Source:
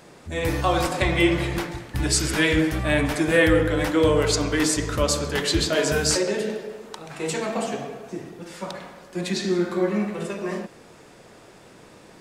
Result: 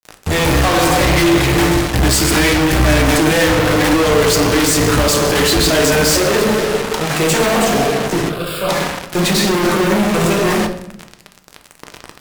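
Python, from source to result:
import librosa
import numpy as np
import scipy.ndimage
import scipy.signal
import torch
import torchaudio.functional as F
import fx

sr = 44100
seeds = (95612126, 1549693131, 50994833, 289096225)

y = fx.fuzz(x, sr, gain_db=46.0, gate_db=-40.0)
y = fx.fixed_phaser(y, sr, hz=1300.0, stages=8, at=(8.29, 8.69))
y = fx.room_shoebox(y, sr, seeds[0], volume_m3=200.0, walls='mixed', distance_m=0.47)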